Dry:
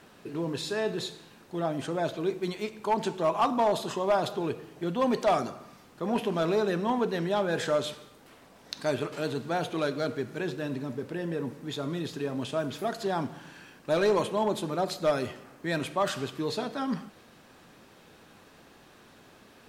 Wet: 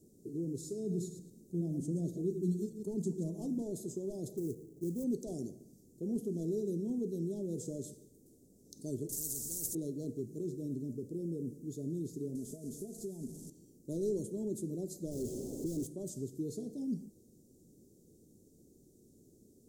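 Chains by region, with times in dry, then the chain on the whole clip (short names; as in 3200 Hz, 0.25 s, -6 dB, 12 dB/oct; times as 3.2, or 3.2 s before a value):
0.79–3.62 reverse delay 0.102 s, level -8.5 dB + bell 180 Hz +9.5 dB 0.38 oct
4.37–5.04 LPF 3200 Hz + short-mantissa float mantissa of 2-bit
9.09–9.75 tone controls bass +12 dB, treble +9 dB + spectral compressor 10:1
12.35–13.5 delta modulation 64 kbps, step -35 dBFS + comb 4.7 ms, depth 44% + compressor, threshold -31 dBFS
15.11–15.87 overloaded stage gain 33 dB + overdrive pedal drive 41 dB, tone 2700 Hz, clips at -21.5 dBFS
whole clip: elliptic band-stop 390–6800 Hz, stop band 80 dB; dynamic EQ 690 Hz, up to -6 dB, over -39 dBFS, Q 0.88; gain -3.5 dB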